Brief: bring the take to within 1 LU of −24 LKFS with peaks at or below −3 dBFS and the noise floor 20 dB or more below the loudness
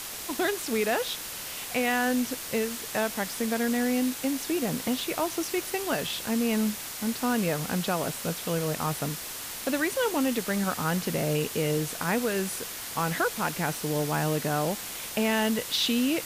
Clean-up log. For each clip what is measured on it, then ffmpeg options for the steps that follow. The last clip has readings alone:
background noise floor −38 dBFS; target noise floor −48 dBFS; integrated loudness −28.0 LKFS; sample peak −13.5 dBFS; target loudness −24.0 LKFS
→ -af "afftdn=noise_reduction=10:noise_floor=-38"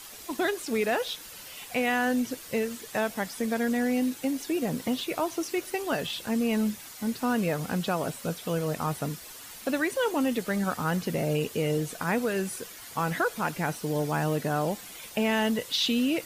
background noise floor −45 dBFS; target noise floor −49 dBFS
→ -af "afftdn=noise_reduction=6:noise_floor=-45"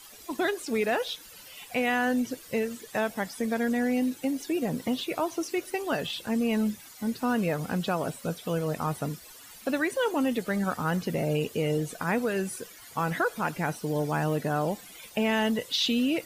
background noise floor −49 dBFS; integrated loudness −29.0 LKFS; sample peak −14.0 dBFS; target loudness −24.0 LKFS
→ -af "volume=5dB"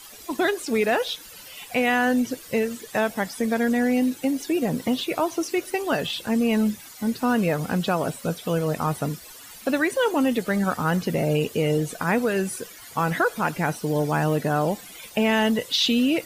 integrated loudness −24.0 LKFS; sample peak −9.0 dBFS; background noise floor −44 dBFS

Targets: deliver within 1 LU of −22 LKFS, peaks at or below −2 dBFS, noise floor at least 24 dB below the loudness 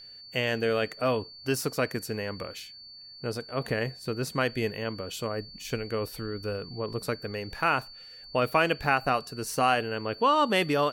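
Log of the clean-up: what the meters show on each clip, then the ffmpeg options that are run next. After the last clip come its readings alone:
interfering tone 4,500 Hz; level of the tone −45 dBFS; integrated loudness −29.0 LKFS; sample peak −9.5 dBFS; target loudness −22.0 LKFS
→ -af "bandreject=frequency=4500:width=30"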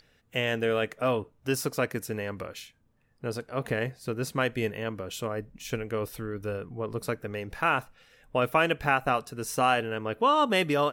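interfering tone none found; integrated loudness −29.0 LKFS; sample peak −9.5 dBFS; target loudness −22.0 LKFS
→ -af "volume=7dB"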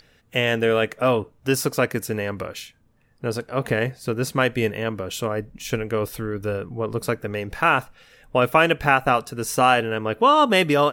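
integrated loudness −22.0 LKFS; sample peak −2.5 dBFS; background noise floor −60 dBFS

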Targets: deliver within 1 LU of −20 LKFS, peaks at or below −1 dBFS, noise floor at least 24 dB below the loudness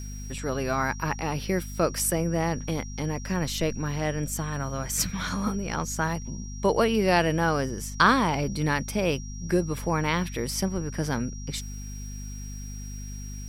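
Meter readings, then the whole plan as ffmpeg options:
mains hum 50 Hz; hum harmonics up to 250 Hz; level of the hum −34 dBFS; interfering tone 5,700 Hz; level of the tone −44 dBFS; integrated loudness −27.0 LKFS; sample peak −6.0 dBFS; target loudness −20.0 LKFS
→ -af "bandreject=frequency=50:width_type=h:width=6,bandreject=frequency=100:width_type=h:width=6,bandreject=frequency=150:width_type=h:width=6,bandreject=frequency=200:width_type=h:width=6,bandreject=frequency=250:width_type=h:width=6"
-af "bandreject=frequency=5700:width=30"
-af "volume=7dB,alimiter=limit=-1dB:level=0:latency=1"

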